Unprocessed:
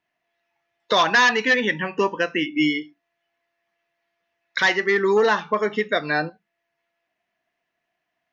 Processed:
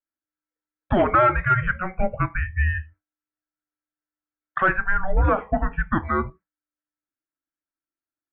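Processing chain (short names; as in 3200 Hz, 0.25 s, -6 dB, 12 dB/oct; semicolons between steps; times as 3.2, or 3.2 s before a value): gate with hold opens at -41 dBFS; mistuned SSB -380 Hz 240–2400 Hz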